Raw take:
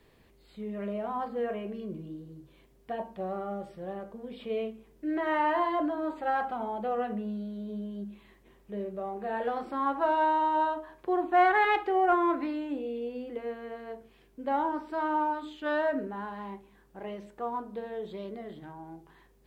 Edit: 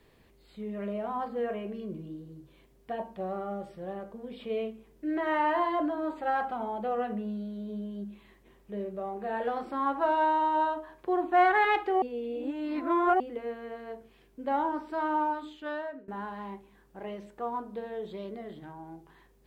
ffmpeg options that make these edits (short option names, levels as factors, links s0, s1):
-filter_complex "[0:a]asplit=4[s0][s1][s2][s3];[s0]atrim=end=12.022[s4];[s1]atrim=start=12.018:end=13.202,asetpts=PTS-STARTPTS,areverse[s5];[s2]atrim=start=13.198:end=16.08,asetpts=PTS-STARTPTS,afade=t=out:st=2.112:d=0.77:silence=0.0749894[s6];[s3]atrim=start=16.08,asetpts=PTS-STARTPTS,afade=t=in:d=0.004:c=hsin:silence=0.0749894[s7];[s4][s5]acrossfade=d=0.004:c1=hsin:c2=hsin[s8];[s6][s7]concat=n=2:v=0:a=1[s9];[s8][s9]acrossfade=d=0.004:c1=hsin:c2=hsin"